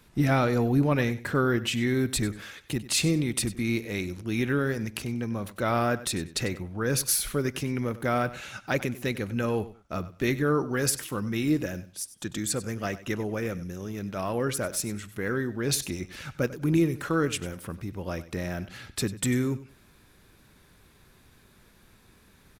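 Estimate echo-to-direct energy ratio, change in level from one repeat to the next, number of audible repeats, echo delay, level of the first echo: -16.0 dB, -14.0 dB, 2, 96 ms, -16.0 dB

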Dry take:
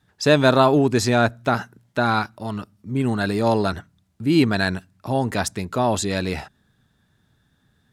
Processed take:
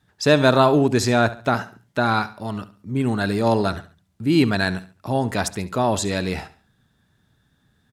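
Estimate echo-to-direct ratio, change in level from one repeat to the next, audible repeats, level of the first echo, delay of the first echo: -15.5 dB, -9.5 dB, 2, -16.0 dB, 70 ms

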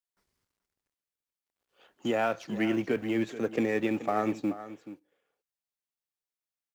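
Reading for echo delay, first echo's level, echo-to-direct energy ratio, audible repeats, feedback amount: 429 ms, -14.0 dB, -14.0 dB, 1, no regular repeats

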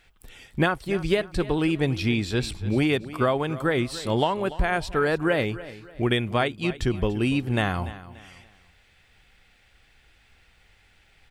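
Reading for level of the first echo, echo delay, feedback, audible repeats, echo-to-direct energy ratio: -16.0 dB, 290 ms, 34%, 3, -15.5 dB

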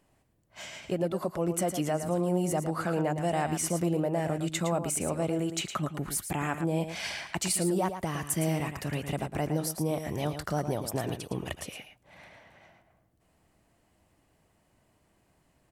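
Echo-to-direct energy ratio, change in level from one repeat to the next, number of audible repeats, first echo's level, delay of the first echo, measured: -9.0 dB, no regular repeats, 1, -9.0 dB, 112 ms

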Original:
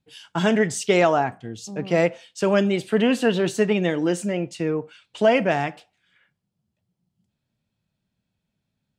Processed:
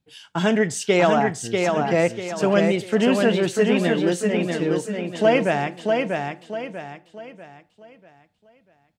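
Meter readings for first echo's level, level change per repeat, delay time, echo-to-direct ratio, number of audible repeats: -4.0 dB, -8.5 dB, 642 ms, -3.5 dB, 4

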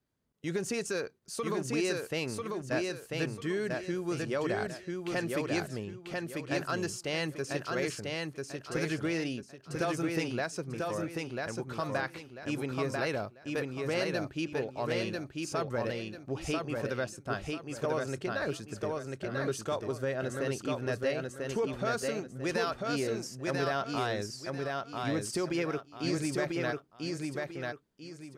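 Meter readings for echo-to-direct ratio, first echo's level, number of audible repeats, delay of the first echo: -2.5 dB, -3.0 dB, 3, 993 ms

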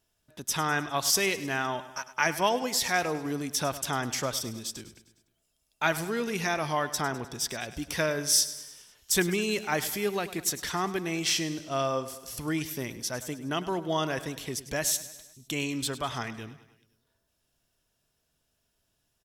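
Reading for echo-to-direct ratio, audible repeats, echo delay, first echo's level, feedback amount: -13.5 dB, 4, 102 ms, -15.0 dB, 56%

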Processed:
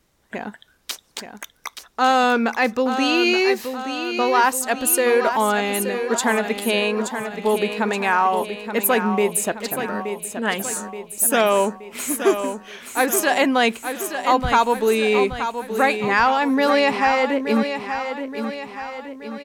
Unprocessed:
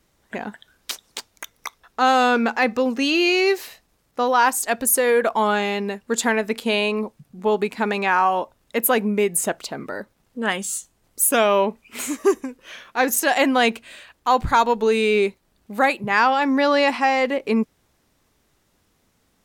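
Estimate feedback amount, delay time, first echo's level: 52%, 875 ms, -8.5 dB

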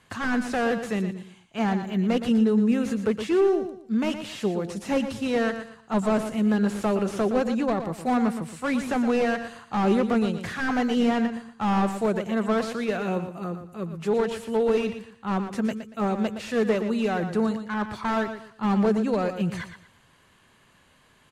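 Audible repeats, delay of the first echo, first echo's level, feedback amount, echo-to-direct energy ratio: 3, 117 ms, -9.5 dB, 28%, -9.0 dB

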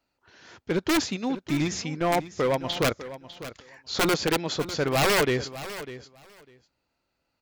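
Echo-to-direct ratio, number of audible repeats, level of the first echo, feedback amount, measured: -14.5 dB, 2, -14.5 dB, 15%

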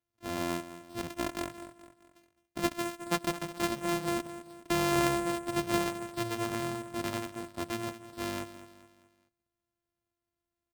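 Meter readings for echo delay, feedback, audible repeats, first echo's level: 212 ms, 44%, 3, -14.0 dB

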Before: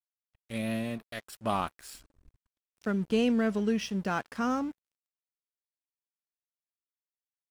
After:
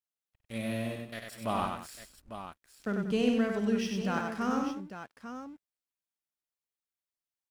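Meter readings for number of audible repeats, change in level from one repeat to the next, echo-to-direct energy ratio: 4, no regular repeats, -2.0 dB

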